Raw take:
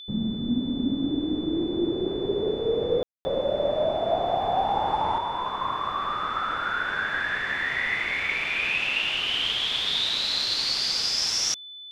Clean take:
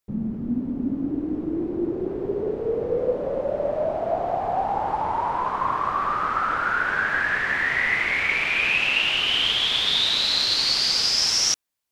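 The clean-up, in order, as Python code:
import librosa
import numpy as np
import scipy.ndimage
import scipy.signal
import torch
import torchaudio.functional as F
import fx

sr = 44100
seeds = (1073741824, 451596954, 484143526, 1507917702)

y = fx.notch(x, sr, hz=3500.0, q=30.0)
y = fx.fix_ambience(y, sr, seeds[0], print_start_s=11.4, print_end_s=11.9, start_s=3.03, end_s=3.25)
y = fx.gain(y, sr, db=fx.steps((0.0, 0.0), (5.18, 4.5)))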